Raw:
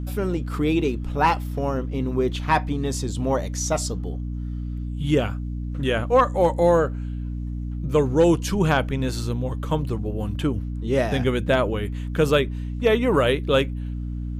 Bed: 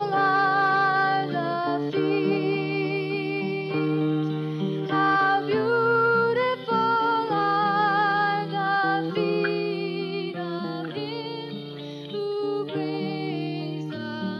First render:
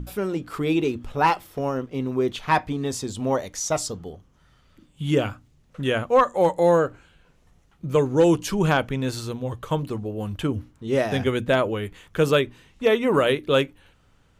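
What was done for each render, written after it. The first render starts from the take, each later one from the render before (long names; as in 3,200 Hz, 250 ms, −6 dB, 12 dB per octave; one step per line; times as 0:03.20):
mains-hum notches 60/120/180/240/300 Hz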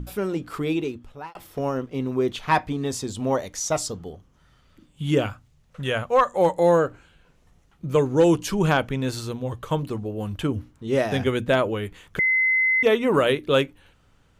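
0:00.51–0:01.35: fade out
0:05.26–0:06.33: parametric band 300 Hz −9.5 dB
0:12.19–0:12.83: beep over 2,050 Hz −17 dBFS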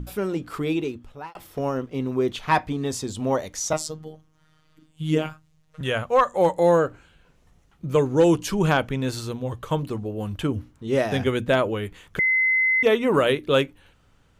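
0:03.73–0:05.81: phases set to zero 156 Hz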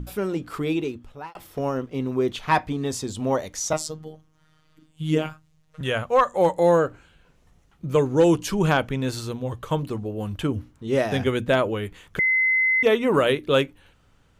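no processing that can be heard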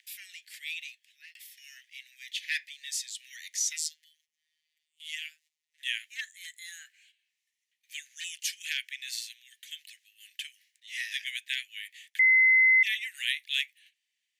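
noise gate −50 dBFS, range −11 dB
Butterworth high-pass 1,800 Hz 96 dB per octave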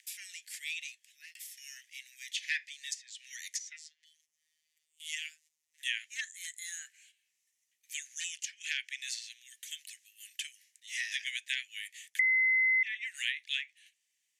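high shelf with overshoot 5,100 Hz +6.5 dB, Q 1.5
treble cut that deepens with the level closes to 1,600 Hz, closed at −25 dBFS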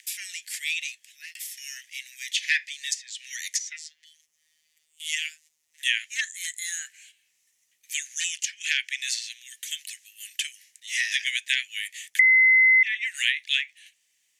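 level +10 dB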